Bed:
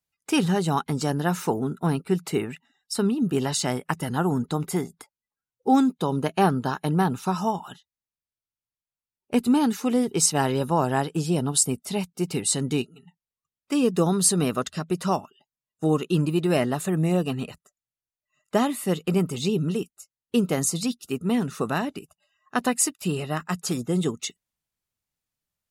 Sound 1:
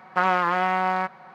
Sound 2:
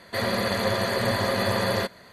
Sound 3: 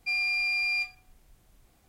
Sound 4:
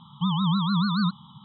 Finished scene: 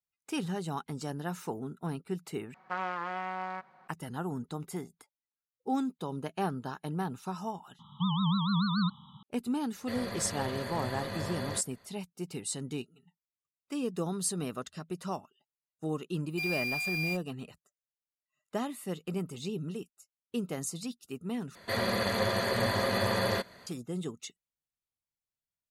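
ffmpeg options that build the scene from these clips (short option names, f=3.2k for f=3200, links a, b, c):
-filter_complex "[2:a]asplit=2[a][b];[0:a]volume=-12dB[c];[1:a]aresample=22050,aresample=44100[d];[4:a]highpass=46[e];[a]lowshelf=f=95:g=9.5[f];[3:a]acrusher=bits=5:mix=0:aa=0.5[g];[c]asplit=3[h][i][j];[h]atrim=end=2.544[k];[d]atrim=end=1.34,asetpts=PTS-STARTPTS,volume=-13.5dB[l];[i]atrim=start=3.876:end=21.554[m];[b]atrim=end=2.12,asetpts=PTS-STARTPTS,volume=-4.5dB[n];[j]atrim=start=23.666[o];[e]atrim=end=1.44,asetpts=PTS-STARTPTS,volume=-5dB,afade=t=in:d=0.004:c=hsin,afade=t=out:st=1.436:d=0.004:c=hsin,adelay=7790[p];[f]atrim=end=2.12,asetpts=PTS-STARTPTS,volume=-14dB,afade=t=in:d=0.004:c=hsin,afade=t=out:st=2.116:d=0.004:c=hsin,adelay=9740[q];[g]atrim=end=1.88,asetpts=PTS-STARTPTS,volume=-6.5dB,afade=t=in:d=0.004:c=hsin,afade=t=out:st=1.876:d=0.004:c=hsin,adelay=16310[r];[k][l]acrossfade=d=0.004:c1=hsin:c2=hsin[s];[s][m]acrossfade=d=0.004:c1=hsin:c2=hsin[t];[t][n]acrossfade=d=0.004:c1=hsin:c2=hsin[u];[u][o]acrossfade=d=0.004:c1=hsin:c2=hsin[v];[v][p][q][r]amix=inputs=4:normalize=0"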